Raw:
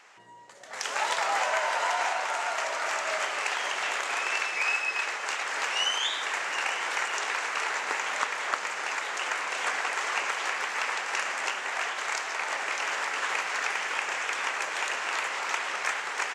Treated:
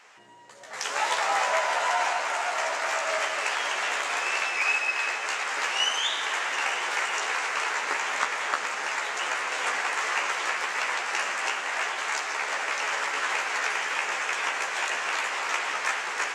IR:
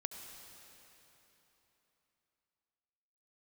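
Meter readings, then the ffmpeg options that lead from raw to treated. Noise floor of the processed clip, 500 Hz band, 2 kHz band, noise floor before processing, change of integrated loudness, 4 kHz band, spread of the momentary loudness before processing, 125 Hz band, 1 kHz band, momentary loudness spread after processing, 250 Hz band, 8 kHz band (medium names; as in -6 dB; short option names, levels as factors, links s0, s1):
-34 dBFS, +2.5 dB, +2.0 dB, -38 dBFS, +2.0 dB, +2.0 dB, 4 LU, no reading, +2.0 dB, 4 LU, +2.0 dB, +2.0 dB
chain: -filter_complex "[0:a]asplit=2[s0][s1];[1:a]atrim=start_sample=2205,adelay=14[s2];[s1][s2]afir=irnorm=-1:irlink=0,volume=0.891[s3];[s0][s3]amix=inputs=2:normalize=0"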